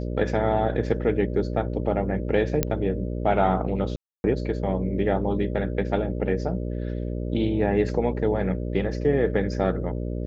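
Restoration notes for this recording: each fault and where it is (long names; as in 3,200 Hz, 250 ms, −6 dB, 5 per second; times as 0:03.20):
mains buzz 60 Hz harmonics 10 −29 dBFS
0:02.63: click −7 dBFS
0:03.96–0:04.24: drop-out 281 ms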